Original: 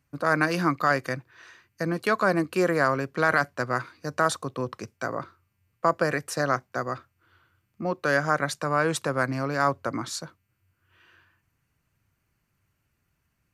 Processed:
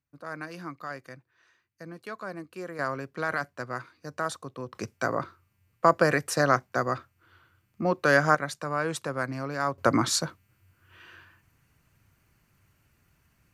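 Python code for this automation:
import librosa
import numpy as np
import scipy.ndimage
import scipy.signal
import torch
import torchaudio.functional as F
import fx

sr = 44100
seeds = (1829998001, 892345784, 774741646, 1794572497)

y = fx.gain(x, sr, db=fx.steps((0.0, -15.0), (2.79, -7.5), (4.75, 2.5), (8.35, -5.0), (9.78, 7.5)))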